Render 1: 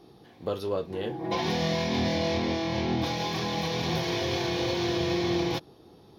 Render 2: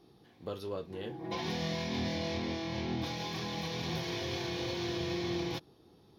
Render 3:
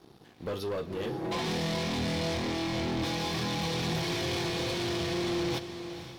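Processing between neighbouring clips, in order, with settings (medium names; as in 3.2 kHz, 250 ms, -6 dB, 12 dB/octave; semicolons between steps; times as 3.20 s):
peaking EQ 650 Hz -3.5 dB 1.5 oct; trim -6.5 dB
waveshaping leveller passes 3; echo that smears into a reverb 496 ms, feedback 41%, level -10 dB; trim -2.5 dB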